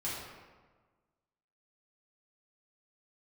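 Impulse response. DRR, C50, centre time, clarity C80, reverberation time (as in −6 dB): −9.0 dB, −0.5 dB, 87 ms, 2.0 dB, 1.4 s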